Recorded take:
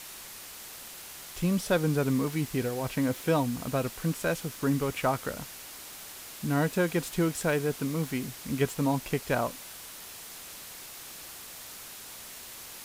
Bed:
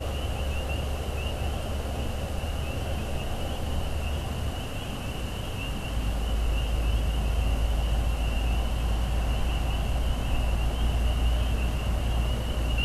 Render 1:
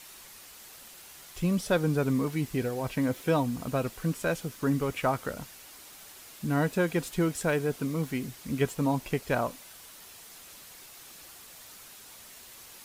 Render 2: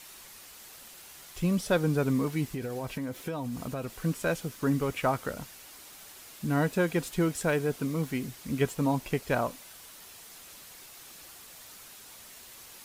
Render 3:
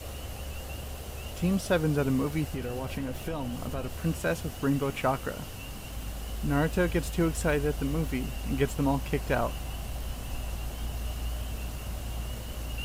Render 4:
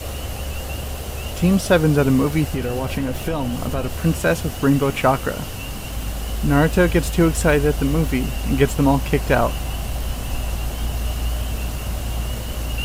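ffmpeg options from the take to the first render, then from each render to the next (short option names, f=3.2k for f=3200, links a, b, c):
-af "afftdn=nr=6:nf=-45"
-filter_complex "[0:a]asettb=1/sr,asplit=3[a][b][c];[a]atrim=end=2.504[d];[b]atrim=start=2.5:end=3.93,asetpts=PTS-STARTPTS,afade=t=in:d=0.004:c=qsin,afade=t=out:st=1.426:d=0.004:c=qsin,acompressor=threshold=-30dB:ratio=6:attack=3.2:release=140:knee=1:detection=peak[e];[c]atrim=start=3.926[f];[d][e]acrossfade=d=0.004:c1=hsin:c2=qsin[g];[g][f]acrossfade=d=0.004:c1=qsin:c2=hsin"
-filter_complex "[1:a]volume=-9dB[a];[0:a][a]amix=inputs=2:normalize=0"
-af "volume=10.5dB"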